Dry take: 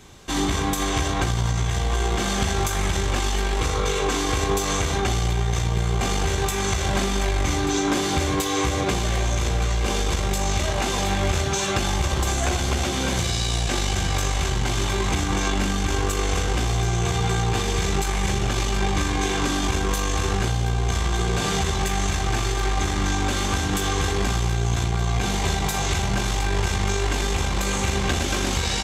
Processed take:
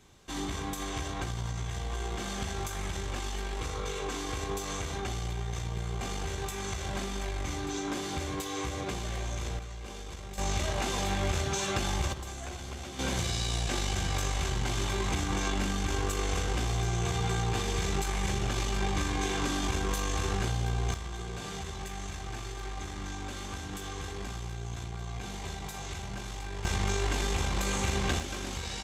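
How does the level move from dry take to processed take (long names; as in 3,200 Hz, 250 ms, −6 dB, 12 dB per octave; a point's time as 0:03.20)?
−12 dB
from 0:09.59 −19 dB
from 0:10.38 −7.5 dB
from 0:12.13 −17 dB
from 0:12.99 −7.5 dB
from 0:20.94 −15.5 dB
from 0:26.65 −6.5 dB
from 0:28.20 −13 dB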